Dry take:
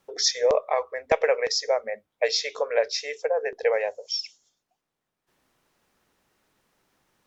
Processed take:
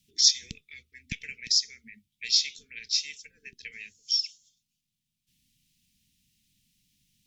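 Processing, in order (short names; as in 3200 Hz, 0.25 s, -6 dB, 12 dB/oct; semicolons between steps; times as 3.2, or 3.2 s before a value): inverse Chebyshev band-stop 540–1100 Hz, stop band 70 dB; gain +3.5 dB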